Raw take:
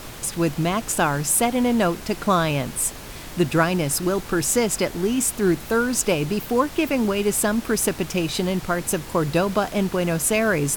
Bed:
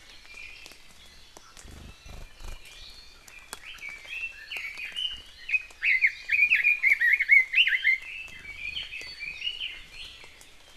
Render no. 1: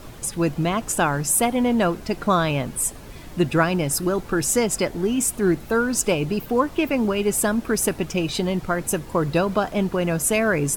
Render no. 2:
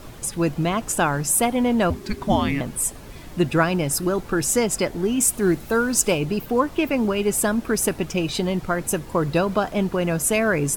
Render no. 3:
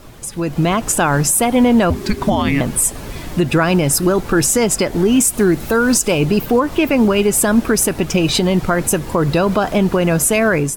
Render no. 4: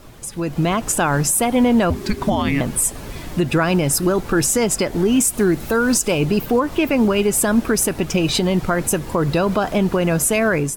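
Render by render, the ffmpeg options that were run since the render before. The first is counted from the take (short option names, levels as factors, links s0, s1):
-af "afftdn=nr=9:nf=-37"
-filter_complex "[0:a]asettb=1/sr,asplit=3[s0][s1][s2];[s0]atrim=end=1.904[s3];[s1]atrim=start=1.9:end=2.61,asetpts=PTS-STARTPTS,afade=t=in:d=0.004:c=qsin,afade=t=out:st=0.706:d=0.004:c=qsin,afreqshift=-420[s4];[s2]atrim=start=2.606[s5];[s3][s4]acrossfade=d=0.004:c1=hsin:c2=qsin[s6];[s6][s5]acrossfade=d=0.004:c1=qsin:c2=hsin,asettb=1/sr,asplit=3[s7][s8][s9];[s7]atrim=end=5.204[s10];[s8]atrim=start=5.2:end=6.18,asetpts=PTS-STARTPTS,afade=t=in:d=0.004:c=qsin,afade=t=out:st=0.976:d=0.004:c=qsin,highshelf=f=4500:g=4.5[s11];[s9]atrim=start=6.176[s12];[s10][s11]acrossfade=d=0.004:c1=hsin:c2=qsin[s13];[s13][s12]acrossfade=d=0.004:c1=qsin:c2=hsin"
-af "alimiter=limit=0.158:level=0:latency=1:release=128,dynaudnorm=f=340:g=3:m=3.76"
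-af "volume=0.708"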